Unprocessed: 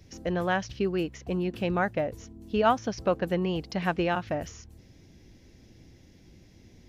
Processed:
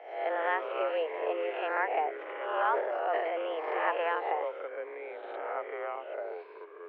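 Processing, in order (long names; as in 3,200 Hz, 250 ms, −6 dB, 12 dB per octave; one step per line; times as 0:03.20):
peak hold with a rise ahead of every peak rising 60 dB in 0.74 s
speech leveller 0.5 s
delay with pitch and tempo change per echo 82 ms, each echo −6 semitones, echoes 3, each echo −6 dB
0:02.16–0:03.46: transient designer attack −8 dB, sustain +9 dB
single-sideband voice off tune +160 Hz 260–2,600 Hz
level −4.5 dB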